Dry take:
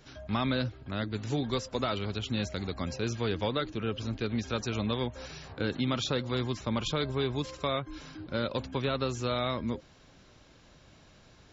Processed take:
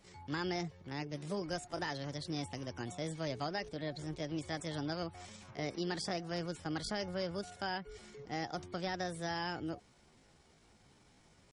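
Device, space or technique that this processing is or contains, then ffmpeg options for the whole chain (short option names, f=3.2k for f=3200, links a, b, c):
chipmunk voice: -af "asetrate=60591,aresample=44100,atempo=0.727827,volume=-7.5dB"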